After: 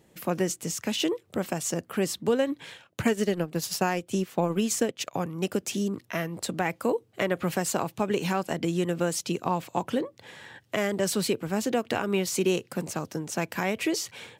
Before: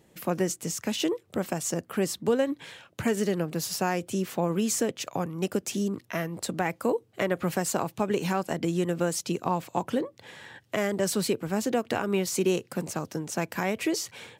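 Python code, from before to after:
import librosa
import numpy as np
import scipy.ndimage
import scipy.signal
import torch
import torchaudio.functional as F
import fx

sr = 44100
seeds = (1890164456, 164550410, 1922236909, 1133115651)

y = fx.dynamic_eq(x, sr, hz=3000.0, q=1.3, threshold_db=-45.0, ratio=4.0, max_db=3)
y = fx.transient(y, sr, attack_db=3, sustain_db=-8, at=(2.7, 5.14))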